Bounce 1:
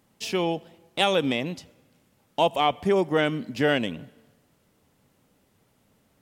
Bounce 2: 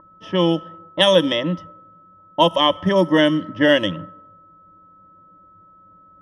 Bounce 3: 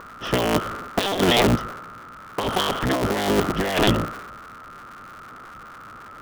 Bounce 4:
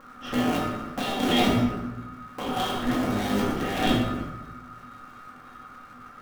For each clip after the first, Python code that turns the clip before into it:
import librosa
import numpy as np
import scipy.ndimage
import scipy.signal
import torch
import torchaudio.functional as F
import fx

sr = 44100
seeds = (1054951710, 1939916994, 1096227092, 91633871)

y1 = x + 10.0 ** (-33.0 / 20.0) * np.sin(2.0 * np.pi * 1300.0 * np.arange(len(x)) / sr)
y1 = fx.ripple_eq(y1, sr, per_octave=1.2, db=16)
y1 = fx.env_lowpass(y1, sr, base_hz=610.0, full_db=-15.0)
y1 = y1 * librosa.db_to_amplitude(4.0)
y2 = fx.cycle_switch(y1, sr, every=3, mode='inverted')
y2 = fx.over_compress(y2, sr, threshold_db=-23.0, ratio=-1.0)
y2 = y2 * librosa.db_to_amplitude(2.5)
y3 = fx.comb_fb(y2, sr, f0_hz=250.0, decay_s=0.26, harmonics='odd', damping=0.0, mix_pct=80)
y3 = fx.room_shoebox(y3, sr, seeds[0], volume_m3=380.0, walls='mixed', distance_m=2.2)